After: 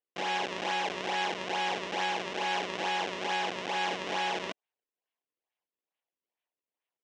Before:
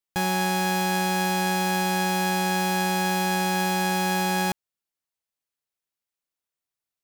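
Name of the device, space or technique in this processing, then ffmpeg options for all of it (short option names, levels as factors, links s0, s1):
circuit-bent sampling toy: -af "acrusher=samples=33:mix=1:aa=0.000001:lfo=1:lforange=52.8:lforate=2.3,highpass=560,equalizer=f=580:t=q:w=4:g=-3,equalizer=f=1300:t=q:w=4:g=-9,equalizer=f=2900:t=q:w=4:g=4,equalizer=f=4500:t=q:w=4:g=-6,lowpass=f=5600:w=0.5412,lowpass=f=5600:w=1.3066,volume=0.794"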